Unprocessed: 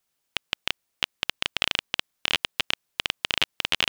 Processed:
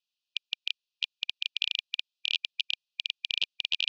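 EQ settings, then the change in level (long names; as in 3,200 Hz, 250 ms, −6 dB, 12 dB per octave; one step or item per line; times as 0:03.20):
linear-phase brick-wall high-pass 2,400 Hz
low-pass filter 4,400 Hz 24 dB per octave
spectral tilt +3 dB per octave
−7.5 dB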